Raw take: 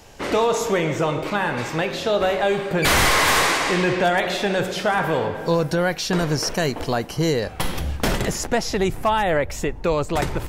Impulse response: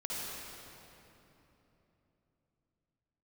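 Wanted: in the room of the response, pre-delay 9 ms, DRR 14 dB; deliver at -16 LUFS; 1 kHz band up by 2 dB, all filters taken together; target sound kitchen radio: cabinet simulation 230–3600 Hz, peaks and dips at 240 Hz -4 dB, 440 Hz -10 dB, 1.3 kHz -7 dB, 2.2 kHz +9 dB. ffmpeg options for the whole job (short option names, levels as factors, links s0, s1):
-filter_complex "[0:a]equalizer=f=1000:t=o:g=4.5,asplit=2[s0][s1];[1:a]atrim=start_sample=2205,adelay=9[s2];[s1][s2]afir=irnorm=-1:irlink=0,volume=0.133[s3];[s0][s3]amix=inputs=2:normalize=0,highpass=230,equalizer=f=240:t=q:w=4:g=-4,equalizer=f=440:t=q:w=4:g=-10,equalizer=f=1300:t=q:w=4:g=-7,equalizer=f=2200:t=q:w=4:g=9,lowpass=f=3600:w=0.5412,lowpass=f=3600:w=1.3066,volume=1.68"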